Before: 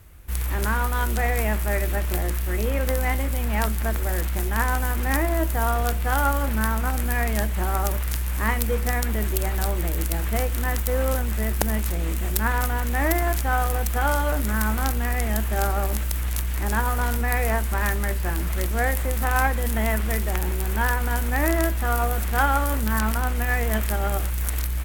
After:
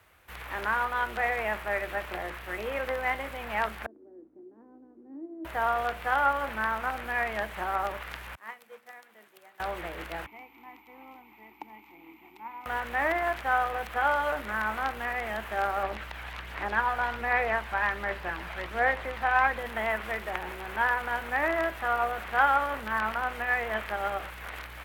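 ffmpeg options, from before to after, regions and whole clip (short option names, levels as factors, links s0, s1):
-filter_complex "[0:a]asettb=1/sr,asplit=3[s0][s1][s2];[s0]atrim=end=3.864[s3];[s1]atrim=start=3.86:end=5.45,asetpts=PTS-STARTPTS,afade=t=in:d=0.004:c=qsin,afade=t=out:st=1.586:d=0.004:c=qsin,asuperpass=centerf=300:order=4:qfactor=2.9,aeval=exprs='val(0)+0.001*(sin(2*PI*60*n/s)+sin(2*PI*2*60*n/s)/2+sin(2*PI*3*60*n/s)/3+sin(2*PI*4*60*n/s)/4+sin(2*PI*5*60*n/s)/5)':c=same[s4];[s2]atrim=start=5.446[s5];[s3][s4]acrossfade=d=0.004:c1=hsin:c2=qsin[s6];[s6][s5]acrossfade=d=0.004:c1=qsin:c2=hsin,asettb=1/sr,asplit=3[s7][s8][s9];[s7]atrim=end=8.354[s10];[s8]atrim=start=8.35:end=9.6,asetpts=PTS-STARTPTS,afade=t=in:d=0.004:c=qsin,afade=t=out:st=1.246:d=0.004:c=qsin,agate=range=0.0224:threshold=0.282:ratio=3:release=100:detection=peak,highpass=f=150:w=0.5412,highpass=f=150:w=1.3066,bandreject=f=60:t=h:w=6,bandreject=f=120:t=h:w=6,bandreject=f=180:t=h:w=6,bandreject=f=240:t=h:w=6,bandreject=f=300:t=h:w=6,bandreject=f=360:t=h:w=6,bandreject=f=420:t=h:w=6[s11];[s9]atrim=start=9.596[s12];[s10][s11]acrossfade=d=0.004:c1=hsin:c2=qsin[s13];[s13][s12]acrossfade=d=0.004:c1=qsin:c2=hsin,asettb=1/sr,asplit=3[s14][s15][s16];[s14]atrim=end=10.264[s17];[s15]atrim=start=10.26:end=12.66,asetpts=PTS-STARTPTS,afade=t=in:d=0.004:c=qsin,afade=t=out:st=2.396:d=0.004:c=qsin,asplit=3[s18][s19][s20];[s18]bandpass=f=300:t=q:w=8,volume=1[s21];[s19]bandpass=f=870:t=q:w=8,volume=0.501[s22];[s20]bandpass=f=2240:t=q:w=8,volume=0.355[s23];[s21][s22][s23]amix=inputs=3:normalize=0,aeval=exprs='val(0)+0.00141*sin(2*PI*14000*n/s)':c=same[s24];[s16]atrim=start=12.656[s25];[s17][s24]acrossfade=d=0.004:c1=hsin:c2=qsin[s26];[s26][s25]acrossfade=d=0.004:c1=qsin:c2=hsin,asettb=1/sr,asplit=3[s27][s28][s29];[s27]atrim=end=15.834[s30];[s28]atrim=start=15.83:end=19.59,asetpts=PTS-STARTPTS,afade=t=in:d=0.004:c=qsin,afade=t=out:st=3.756:d=0.004:c=qsin,acrossover=split=4500[s31][s32];[s32]acompressor=threshold=0.00501:ratio=4:attack=1:release=60[s33];[s31][s33]amix=inputs=2:normalize=0,aphaser=in_gain=1:out_gain=1:delay=1.3:decay=0.29:speed=1.3:type=sinusoidal[s34];[s29]atrim=start=19.586[s35];[s30][s34]acrossfade=d=0.004:c1=hsin:c2=qsin[s36];[s36][s35]acrossfade=d=0.004:c1=qsin:c2=hsin,acrossover=split=3700[s37][s38];[s38]acompressor=threshold=0.0126:ratio=4:attack=1:release=60[s39];[s37][s39]amix=inputs=2:normalize=0,highpass=82,acrossover=split=500 3900:gain=0.158 1 0.251[s40][s41][s42];[s40][s41][s42]amix=inputs=3:normalize=0"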